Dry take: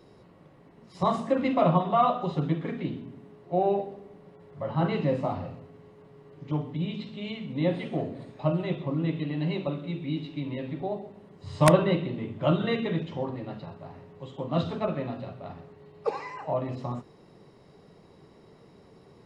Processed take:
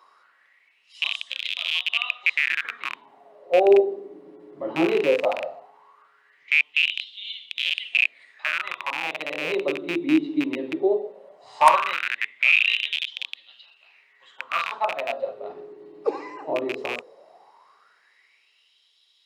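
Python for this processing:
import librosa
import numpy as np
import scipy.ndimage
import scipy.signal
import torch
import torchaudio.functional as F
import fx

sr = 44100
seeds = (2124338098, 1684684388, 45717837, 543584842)

y = fx.rattle_buzz(x, sr, strikes_db=-32.0, level_db=-16.0)
y = fx.filter_lfo_highpass(y, sr, shape='sine', hz=0.17, low_hz=310.0, high_hz=3400.0, q=7.0)
y = F.gain(torch.from_numpy(y), -1.0).numpy()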